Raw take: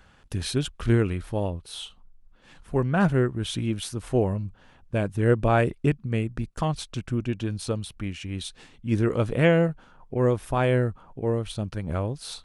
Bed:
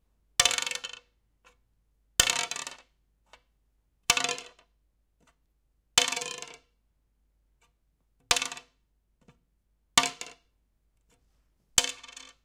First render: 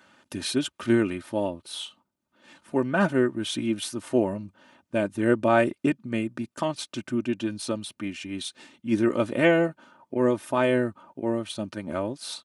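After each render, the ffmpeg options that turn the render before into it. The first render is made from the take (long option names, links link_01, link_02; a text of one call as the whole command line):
ffmpeg -i in.wav -af "highpass=frequency=140:width=0.5412,highpass=frequency=140:width=1.3066,aecho=1:1:3.3:0.66" out.wav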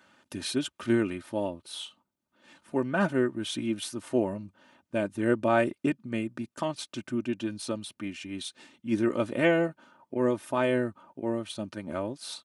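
ffmpeg -i in.wav -af "volume=-3.5dB" out.wav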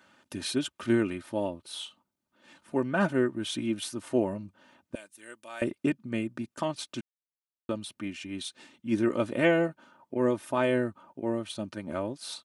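ffmpeg -i in.wav -filter_complex "[0:a]asettb=1/sr,asplit=3[link_01][link_02][link_03];[link_01]atrim=end=4.954[link_04];[link_02]atrim=start=4.95:end=5.62,asetpts=PTS-STARTPTS,afade=type=in:duration=0.004:curve=qsin,afade=type=out:start_time=0.666:duration=0.004:curve=qsin,aderivative[link_05];[link_03]atrim=start=5.616[link_06];[link_04][link_05]acrossfade=duration=0.004:curve1=hsin:curve2=qsin[link_07];[link_07][link_06]acrossfade=duration=0.004:curve1=qsin:curve2=hsin,asplit=3[link_08][link_09][link_10];[link_08]atrim=end=7.01,asetpts=PTS-STARTPTS,afade=type=out:start_time=7.006:duration=0.004:curve=hsin[link_11];[link_09]atrim=start=7.01:end=7.69,asetpts=PTS-STARTPTS,volume=0[link_12];[link_10]atrim=start=7.69,asetpts=PTS-STARTPTS,afade=type=in:duration=0.004:curve=hsin[link_13];[link_11][link_12][link_13]concat=n=3:v=0:a=1" out.wav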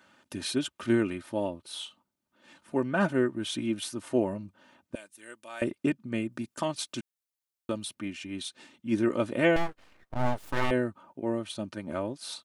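ffmpeg -i in.wav -filter_complex "[0:a]asettb=1/sr,asplit=3[link_01][link_02][link_03];[link_01]atrim=end=6.324[link_04];[link_02]atrim=start=6.32:end=7.95,asetpts=PTS-STARTPTS,afade=type=in:duration=0.004:curve=qsin,afade=type=out:start_time=1.626:duration=0.004:curve=qsin,highshelf=frequency=4400:gain=6.5[link_05];[link_03]atrim=start=7.946[link_06];[link_04][link_05]acrossfade=duration=0.004:curve1=hsin:curve2=qsin[link_07];[link_07][link_06]acrossfade=duration=0.004:curve1=qsin:curve2=hsin,asettb=1/sr,asplit=3[link_08][link_09][link_10];[link_08]atrim=end=9.564[link_11];[link_09]atrim=start=9.56:end=10.71,asetpts=PTS-STARTPTS,afade=type=in:duration=0.004:curve=qsin,afade=type=out:start_time=1.146:duration=0.004:curve=qsin,aeval=exprs='abs(val(0))':channel_layout=same[link_12];[link_10]atrim=start=10.706[link_13];[link_11][link_12]acrossfade=duration=0.004:curve1=hsin:curve2=qsin[link_14];[link_14][link_13]acrossfade=duration=0.004:curve1=qsin:curve2=hsin" out.wav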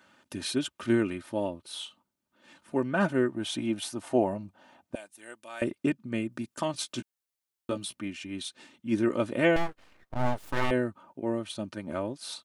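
ffmpeg -i in.wav -filter_complex "[0:a]asettb=1/sr,asplit=3[link_01][link_02][link_03];[link_01]atrim=end=3.324[link_04];[link_02]atrim=start=3.32:end=5.37,asetpts=PTS-STARTPTS,afade=type=in:duration=0.004:curve=qsin,afade=type=out:start_time=2.046:duration=0.004:curve=qsin,equalizer=frequency=750:width=3.7:gain=11.5[link_05];[link_03]atrim=start=5.366[link_06];[link_04][link_05]acrossfade=duration=0.004:curve1=hsin:curve2=qsin[link_07];[link_07][link_06]acrossfade=duration=0.004:curve1=qsin:curve2=hsin,asettb=1/sr,asplit=3[link_08][link_09][link_10];[link_08]atrim=end=6.724[link_11];[link_09]atrim=start=6.72:end=8,asetpts=PTS-STARTPTS,afade=type=in:duration=0.004:curve=qsin,afade=type=out:start_time=1.276:duration=0.004:curve=qsin,asplit=2[link_12][link_13];[link_13]adelay=16,volume=-6.5dB[link_14];[link_12][link_14]amix=inputs=2:normalize=0,atrim=end_sample=56448[link_15];[link_10]atrim=start=7.996[link_16];[link_11][link_15]acrossfade=duration=0.004:curve1=hsin:curve2=qsin[link_17];[link_17][link_16]acrossfade=duration=0.004:curve1=qsin:curve2=hsin" out.wav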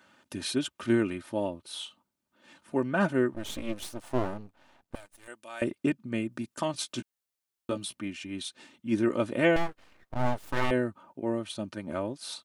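ffmpeg -i in.wav -filter_complex "[0:a]asettb=1/sr,asplit=3[link_01][link_02][link_03];[link_01]atrim=end=3.344[link_04];[link_02]atrim=start=3.34:end=5.28,asetpts=PTS-STARTPTS,afade=type=in:duration=0.004:curve=qsin,afade=type=out:start_time=1.936:duration=0.004:curve=qsin,aeval=exprs='max(val(0),0)':channel_layout=same[link_05];[link_03]atrim=start=5.276[link_06];[link_04][link_05]acrossfade=duration=0.004:curve1=hsin:curve2=qsin[link_07];[link_07][link_06]acrossfade=duration=0.004:curve1=qsin:curve2=hsin" out.wav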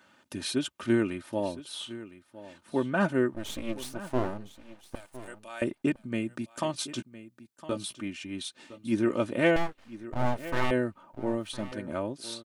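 ffmpeg -i in.wav -af "aecho=1:1:1010:0.158" out.wav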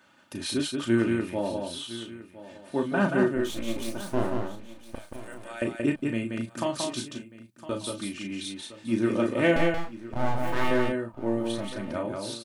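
ffmpeg -i in.wav -filter_complex "[0:a]asplit=2[link_01][link_02];[link_02]adelay=35,volume=-6dB[link_03];[link_01][link_03]amix=inputs=2:normalize=0,asplit=2[link_04][link_05];[link_05]aecho=0:1:179:0.631[link_06];[link_04][link_06]amix=inputs=2:normalize=0" out.wav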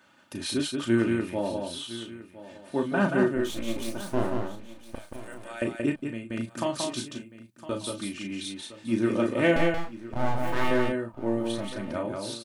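ffmpeg -i in.wav -filter_complex "[0:a]asplit=2[link_01][link_02];[link_01]atrim=end=6.3,asetpts=PTS-STARTPTS,afade=type=out:start_time=5.79:duration=0.51:silence=0.266073[link_03];[link_02]atrim=start=6.3,asetpts=PTS-STARTPTS,afade=type=in:duration=0.004:curve=hsin:silence=0.266073[link_04];[link_03][link_04]concat=n=2:v=0:a=1" out.wav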